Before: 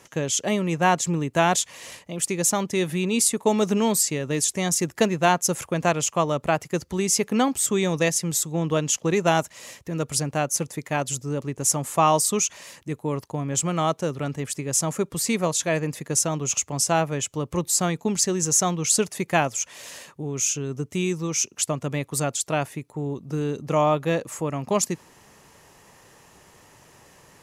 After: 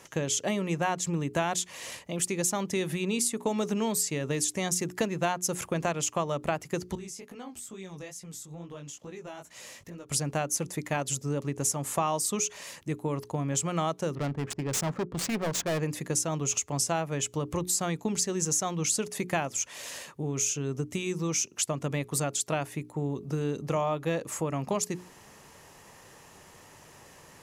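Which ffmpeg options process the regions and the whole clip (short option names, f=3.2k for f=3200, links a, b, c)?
-filter_complex "[0:a]asettb=1/sr,asplit=3[a][b][c];[a]atrim=end=6.954[d];[b]atrim=start=6.95:end=10.11,asetpts=PTS-STARTPTS,afade=t=in:d=0.004:c=qsin,afade=t=out:st=3.156:d=0.004:c=qsin,acompressor=threshold=-38dB:ratio=5:attack=3.2:release=140:knee=1:detection=peak,flanger=delay=16:depth=5.8:speed=2.3[e];[c]atrim=start=10.106[f];[d][e]acrossfade=d=0.004:c1=hsin:c2=qsin[g];[g][f]acrossfade=d=0.004:c1=qsin:c2=hsin,asettb=1/sr,asplit=3[h][i][j];[h]atrim=end=14.154[k];[i]atrim=start=14.15:end=15.8,asetpts=PTS-STARTPTS,afade=t=in:d=0.004:c=qsin,afade=t=out:st=1.646:d=0.004:c=qsin,adynamicsmooth=sensitivity=6:basefreq=610,asoftclip=type=hard:threshold=-25dB[l];[j]atrim=start=15.796[m];[k][l]acrossfade=d=0.004:c1=hsin:c2=qsin[n];[n][m]acrossfade=d=0.004:c1=qsin:c2=hsin,acompressor=threshold=-26dB:ratio=4,bandreject=f=60:t=h:w=6,bandreject=f=120:t=h:w=6,bandreject=f=180:t=h:w=6,bandreject=f=240:t=h:w=6,bandreject=f=300:t=h:w=6,bandreject=f=360:t=h:w=6,bandreject=f=420:t=h:w=6"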